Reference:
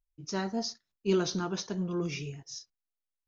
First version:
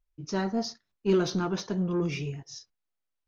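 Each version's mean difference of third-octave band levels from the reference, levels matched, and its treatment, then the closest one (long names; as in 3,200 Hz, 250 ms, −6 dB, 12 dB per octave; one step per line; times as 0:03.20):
2.0 dB: low-pass filter 2,700 Hz 6 dB per octave
in parallel at −4 dB: soft clipping −32.5 dBFS, distortion −7 dB
on the sum: level +1.5 dB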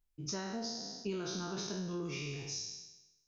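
7.5 dB: peak hold with a decay on every bin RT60 0.96 s
downward compressor 6 to 1, threshold −38 dBFS, peak gain reduction 15.5 dB
level +1.5 dB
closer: first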